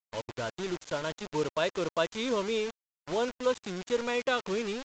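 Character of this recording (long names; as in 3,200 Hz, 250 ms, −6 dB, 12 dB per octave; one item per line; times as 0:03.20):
a quantiser's noise floor 6 bits, dither none
AAC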